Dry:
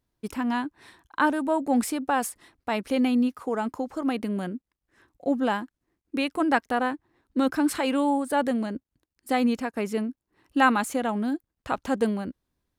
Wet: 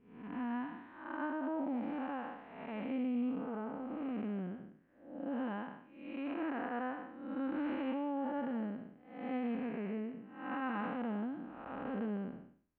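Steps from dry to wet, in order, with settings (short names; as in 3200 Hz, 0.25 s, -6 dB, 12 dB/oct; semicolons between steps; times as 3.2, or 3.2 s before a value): time blur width 0.322 s; steep low-pass 2800 Hz 36 dB/oct; limiter -23 dBFS, peak gain reduction 6 dB; gain -6.5 dB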